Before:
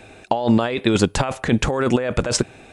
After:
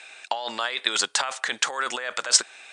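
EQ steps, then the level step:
high-pass filter 1,500 Hz 12 dB per octave
elliptic low-pass filter 9,100 Hz, stop band 40 dB
dynamic equaliser 2,500 Hz, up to −7 dB, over −46 dBFS, Q 3
+5.5 dB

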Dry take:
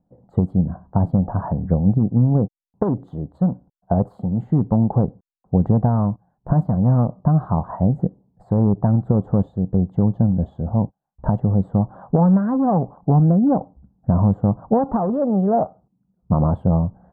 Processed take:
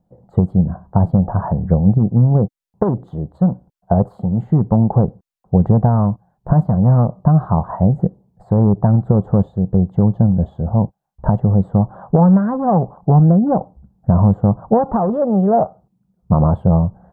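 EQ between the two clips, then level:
parametric band 270 Hz −9 dB 0.27 octaves
+4.5 dB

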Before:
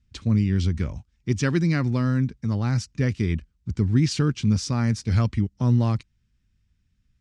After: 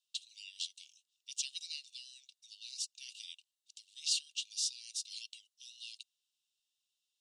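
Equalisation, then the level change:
Chebyshev high-pass with heavy ripple 2,700 Hz, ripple 6 dB
+3.5 dB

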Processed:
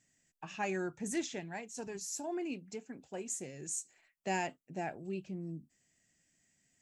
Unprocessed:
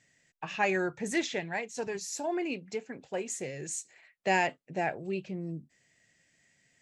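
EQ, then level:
octave-band graphic EQ 125/500/1,000/2,000/4,000 Hz −8/−10/−5/−10/−8 dB
+1.0 dB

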